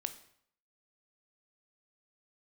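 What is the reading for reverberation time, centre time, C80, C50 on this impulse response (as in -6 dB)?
0.65 s, 7 ms, 16.0 dB, 13.0 dB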